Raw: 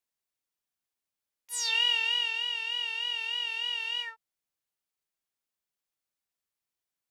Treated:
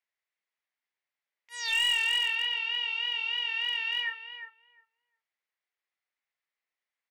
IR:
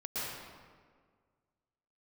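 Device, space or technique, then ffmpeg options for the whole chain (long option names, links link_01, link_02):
megaphone: -filter_complex "[0:a]asettb=1/sr,asplit=3[link_01][link_02][link_03];[link_01]atrim=end=2.544[link_04];[link_02]atrim=start=2.54:end=3.49,asetpts=PTS-STARTPTS,afade=type=in:duration=0.004:curve=qsin,afade=type=out:start_time=0.946:duration=0.004:curve=qsin,bandreject=frequency=1800:width=8.4[link_05];[link_03]atrim=start=3.486[link_06];[link_04][link_05]acrossfade=duration=0.004:curve1=hsin:curve2=qsin[link_07];[link_07][link_06]acrossfade=duration=0.004:curve1=qsin:curve2=hsin,highpass=490,lowpass=3800,equalizer=frequency=2000:width_type=o:width=0.48:gain=10,asplit=2[link_08][link_09];[link_09]adelay=354,lowpass=frequency=1300:poles=1,volume=-5.5dB,asplit=2[link_10][link_11];[link_11]adelay=354,lowpass=frequency=1300:poles=1,volume=0.19,asplit=2[link_12][link_13];[link_13]adelay=354,lowpass=frequency=1300:poles=1,volume=0.19[link_14];[link_08][link_10][link_12][link_14]amix=inputs=4:normalize=0,asoftclip=type=hard:threshold=-22.5dB,asplit=2[link_15][link_16];[link_16]adelay=37,volume=-13dB[link_17];[link_15][link_17]amix=inputs=2:normalize=0"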